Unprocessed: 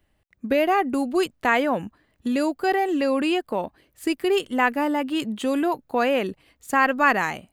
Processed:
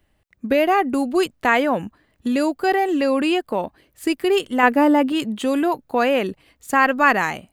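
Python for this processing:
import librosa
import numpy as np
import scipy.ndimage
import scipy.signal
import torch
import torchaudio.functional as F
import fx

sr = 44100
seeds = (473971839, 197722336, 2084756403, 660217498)

y = fx.peak_eq(x, sr, hz=390.0, db=6.5, octaves=2.5, at=(4.63, 5.12))
y = F.gain(torch.from_numpy(y), 3.0).numpy()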